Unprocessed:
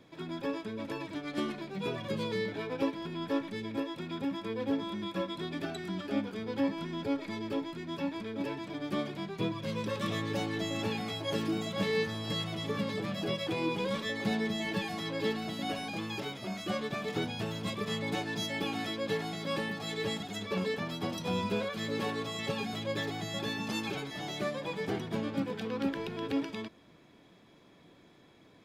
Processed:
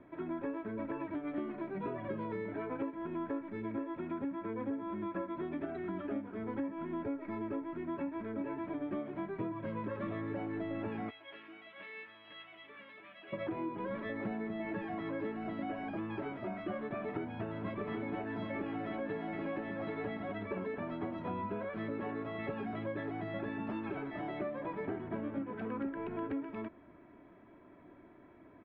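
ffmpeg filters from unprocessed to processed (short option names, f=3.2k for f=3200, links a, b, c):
-filter_complex "[0:a]asplit=3[a][b][c];[a]afade=t=out:st=11.09:d=0.02[d];[b]bandpass=f=3k:t=q:w=2.2,afade=t=in:st=11.09:d=0.02,afade=t=out:st=13.32:d=0.02[e];[c]afade=t=in:st=13.32:d=0.02[f];[d][e][f]amix=inputs=3:normalize=0,asplit=3[g][h][i];[g]afade=t=out:st=17.78:d=0.02[j];[h]aecho=1:1:778:0.531,afade=t=in:st=17.78:d=0.02,afade=t=out:st=20.31:d=0.02[k];[i]afade=t=in:st=20.31:d=0.02[l];[j][k][l]amix=inputs=3:normalize=0,lowpass=f=1.9k:w=0.5412,lowpass=f=1.9k:w=1.3066,aecho=1:1:3.1:0.5,acompressor=threshold=-36dB:ratio=6,volume=1dB"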